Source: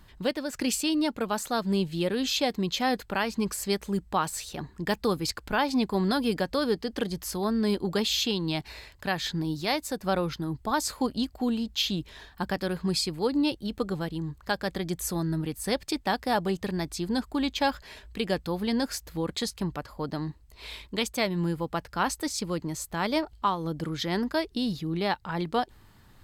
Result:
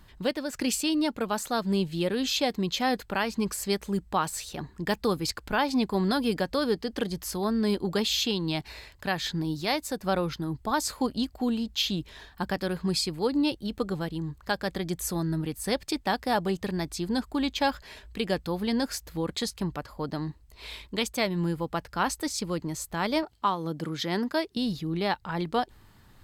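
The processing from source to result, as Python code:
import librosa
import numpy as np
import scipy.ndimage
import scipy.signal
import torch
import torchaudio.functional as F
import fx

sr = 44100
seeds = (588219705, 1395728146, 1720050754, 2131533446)

y = fx.highpass(x, sr, hz=130.0, slope=12, at=(23.23, 24.57))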